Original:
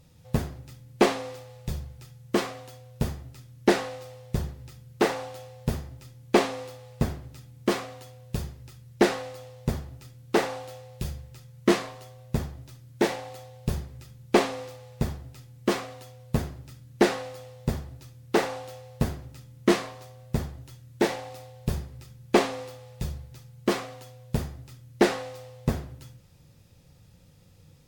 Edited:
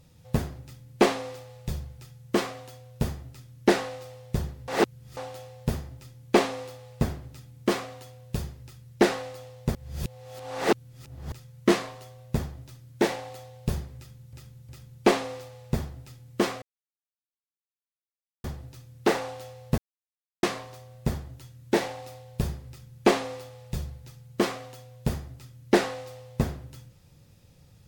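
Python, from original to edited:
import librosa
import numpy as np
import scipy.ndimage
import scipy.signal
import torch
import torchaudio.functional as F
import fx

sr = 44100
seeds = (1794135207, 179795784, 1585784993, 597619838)

y = fx.edit(x, sr, fx.reverse_span(start_s=4.68, length_s=0.49),
    fx.reverse_span(start_s=9.75, length_s=1.57),
    fx.repeat(start_s=13.97, length_s=0.36, count=3),
    fx.silence(start_s=15.9, length_s=1.82),
    fx.silence(start_s=19.06, length_s=0.65), tone=tone)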